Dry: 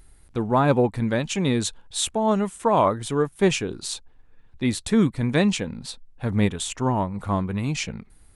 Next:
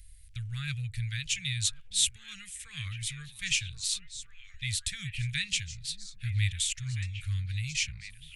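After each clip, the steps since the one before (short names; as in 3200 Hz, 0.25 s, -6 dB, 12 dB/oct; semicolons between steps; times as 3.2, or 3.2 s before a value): inverse Chebyshev band-stop 230–1000 Hz, stop band 50 dB; delay with a stepping band-pass 0.54 s, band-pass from 300 Hz, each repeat 1.4 oct, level -4 dB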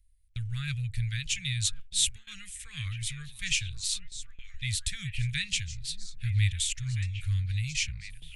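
gate with hold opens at -38 dBFS; low shelf 68 Hz +10 dB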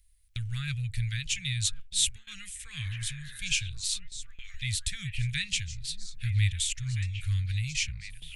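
spectral repair 2.84–3.59, 260–2100 Hz both; mismatched tape noise reduction encoder only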